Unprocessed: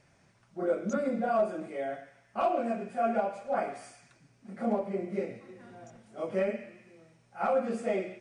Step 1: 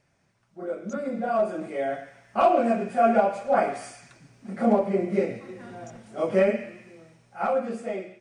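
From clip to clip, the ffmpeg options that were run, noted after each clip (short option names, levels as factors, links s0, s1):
-af "dynaudnorm=f=340:g=9:m=5.31,volume=0.596"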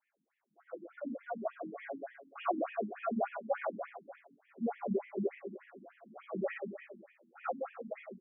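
-filter_complex "[0:a]flanger=delay=19:depth=2.4:speed=0.34,asplit=2[s0][s1];[s1]aecho=0:1:70|157.5|266.9|403.6|574.5:0.631|0.398|0.251|0.158|0.1[s2];[s0][s2]amix=inputs=2:normalize=0,afftfilt=real='re*between(b*sr/1024,220*pow(2500/220,0.5+0.5*sin(2*PI*3.4*pts/sr))/1.41,220*pow(2500/220,0.5+0.5*sin(2*PI*3.4*pts/sr))*1.41)':imag='im*between(b*sr/1024,220*pow(2500/220,0.5+0.5*sin(2*PI*3.4*pts/sr))/1.41,220*pow(2500/220,0.5+0.5*sin(2*PI*3.4*pts/sr))*1.41)':win_size=1024:overlap=0.75,volume=0.562"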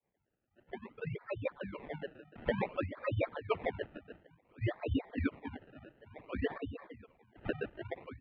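-af "adynamicequalizer=threshold=0.00282:dfrequency=1600:dqfactor=1.3:tfrequency=1600:tqfactor=1.3:attack=5:release=100:ratio=0.375:range=2.5:mode=cutabove:tftype=bell,acrusher=samples=26:mix=1:aa=0.000001:lfo=1:lforange=26:lforate=0.56,highpass=f=160:t=q:w=0.5412,highpass=f=160:t=q:w=1.307,lowpass=f=3000:t=q:w=0.5176,lowpass=f=3000:t=q:w=0.7071,lowpass=f=3000:t=q:w=1.932,afreqshift=-120,volume=1.12"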